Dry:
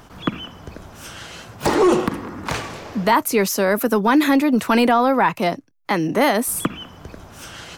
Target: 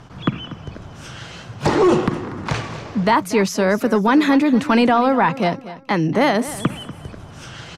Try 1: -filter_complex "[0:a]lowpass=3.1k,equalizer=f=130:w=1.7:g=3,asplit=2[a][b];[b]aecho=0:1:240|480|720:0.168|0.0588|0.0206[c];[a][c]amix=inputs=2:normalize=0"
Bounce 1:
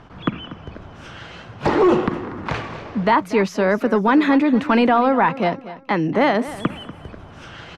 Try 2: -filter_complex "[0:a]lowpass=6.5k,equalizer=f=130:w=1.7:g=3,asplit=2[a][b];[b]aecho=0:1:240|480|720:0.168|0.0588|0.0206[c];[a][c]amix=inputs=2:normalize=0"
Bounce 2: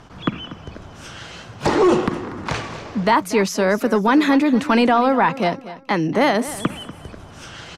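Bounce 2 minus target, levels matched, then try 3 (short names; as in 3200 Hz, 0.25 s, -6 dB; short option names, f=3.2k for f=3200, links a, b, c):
125 Hz band -3.0 dB
-filter_complex "[0:a]lowpass=6.5k,equalizer=f=130:w=1.7:g=9.5,asplit=2[a][b];[b]aecho=0:1:240|480|720:0.168|0.0588|0.0206[c];[a][c]amix=inputs=2:normalize=0"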